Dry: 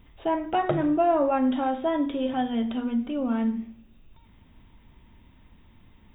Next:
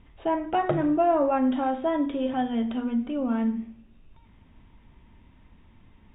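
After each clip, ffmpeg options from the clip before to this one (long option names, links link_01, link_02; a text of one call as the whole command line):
ffmpeg -i in.wav -af "lowpass=3200" out.wav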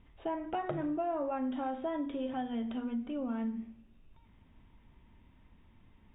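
ffmpeg -i in.wav -af "acompressor=threshold=-26dB:ratio=3,volume=-6.5dB" out.wav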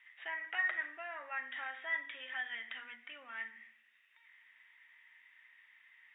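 ffmpeg -i in.wav -af "highpass=frequency=1900:width_type=q:width=9.3,volume=1.5dB" out.wav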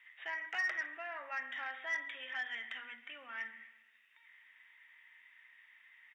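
ffmpeg -i in.wav -filter_complex "[0:a]aecho=1:1:134|268|402|536:0.112|0.0539|0.0259|0.0124,acrossover=split=540[link_01][link_02];[link_02]asoftclip=type=tanh:threshold=-29.5dB[link_03];[link_01][link_03]amix=inputs=2:normalize=0,volume=1dB" out.wav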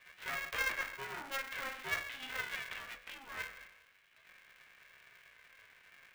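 ffmpeg -i in.wav -af "flanger=delay=15:depth=7.4:speed=0.41,aeval=exprs='val(0)*sgn(sin(2*PI*270*n/s))':channel_layout=same,volume=3.5dB" out.wav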